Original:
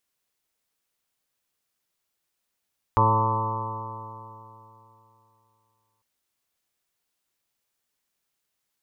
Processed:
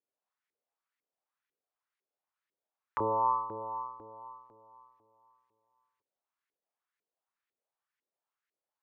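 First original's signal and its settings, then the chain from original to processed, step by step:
stretched partials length 3.05 s, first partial 108 Hz, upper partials -10/-11/-9/-8/-17/-15/1.5/0/-3/-17 dB, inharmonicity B 0.0012, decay 3.05 s, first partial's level -21 dB
LFO band-pass saw up 2 Hz 360–2000 Hz

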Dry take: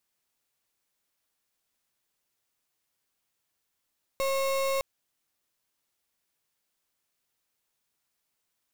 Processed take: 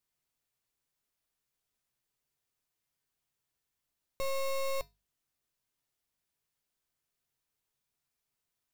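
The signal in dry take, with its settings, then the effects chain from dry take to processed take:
pulse 542 Hz, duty 34% -27.5 dBFS 0.61 s
low shelf 160 Hz +10 dB; notches 50/100/150/200 Hz; resonator 140 Hz, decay 0.22 s, harmonics odd, mix 60%

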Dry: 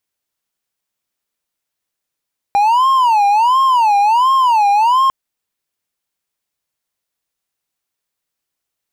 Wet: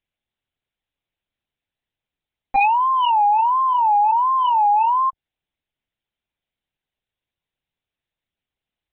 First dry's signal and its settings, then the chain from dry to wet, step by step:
siren wail 805–1070 Hz 1.4/s triangle -7 dBFS 2.55 s
LPC vocoder at 8 kHz pitch kept; bell 1200 Hz -7 dB 1.1 oct

